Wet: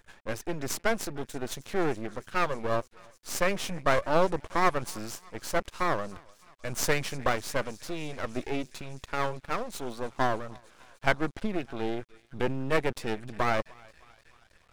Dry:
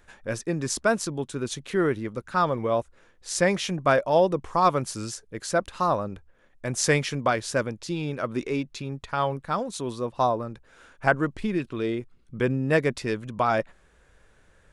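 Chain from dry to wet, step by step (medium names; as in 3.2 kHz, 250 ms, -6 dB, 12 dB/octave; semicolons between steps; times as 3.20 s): thinning echo 304 ms, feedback 83%, high-pass 980 Hz, level -22 dB; half-wave rectifier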